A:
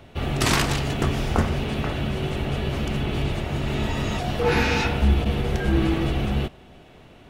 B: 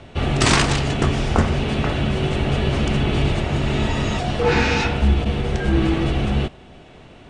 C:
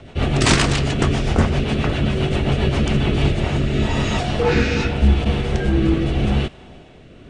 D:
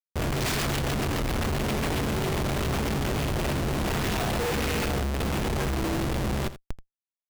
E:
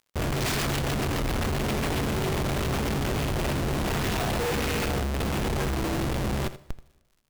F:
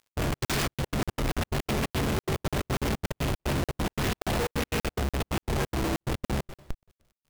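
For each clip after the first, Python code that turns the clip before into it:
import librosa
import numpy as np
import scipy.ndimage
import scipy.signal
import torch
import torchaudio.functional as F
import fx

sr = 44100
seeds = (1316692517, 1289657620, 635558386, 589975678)

y1 = scipy.signal.sosfilt(scipy.signal.butter(16, 9600.0, 'lowpass', fs=sr, output='sos'), x)
y1 = fx.rider(y1, sr, range_db=10, speed_s=2.0)
y1 = y1 * librosa.db_to_amplitude(3.5)
y2 = fx.rotary_switch(y1, sr, hz=7.5, then_hz=0.85, switch_at_s=2.84)
y2 = y2 * librosa.db_to_amplitude(3.0)
y3 = fx.schmitt(y2, sr, flips_db=-31.0)
y3 = y3 + 10.0 ** (-14.5 / 20.0) * np.pad(y3, (int(82 * sr / 1000.0), 0))[:len(y3)]
y3 = y3 * librosa.db_to_amplitude(-8.5)
y4 = fx.dmg_crackle(y3, sr, seeds[0], per_s=120.0, level_db=-51.0)
y4 = fx.rev_plate(y4, sr, seeds[1], rt60_s=1.2, hf_ratio=0.9, predelay_ms=0, drr_db=19.0)
y5 = fx.step_gate(y4, sr, bpm=178, pattern='x.xx.xxx.', floor_db=-60.0, edge_ms=4.5)
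y5 = fx.buffer_crackle(y5, sr, first_s=0.45, period_s=0.29, block=2048, kind='zero')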